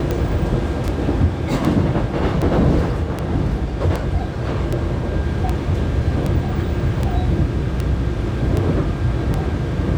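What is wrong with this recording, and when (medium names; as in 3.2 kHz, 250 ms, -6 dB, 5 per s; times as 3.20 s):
tick 78 rpm -9 dBFS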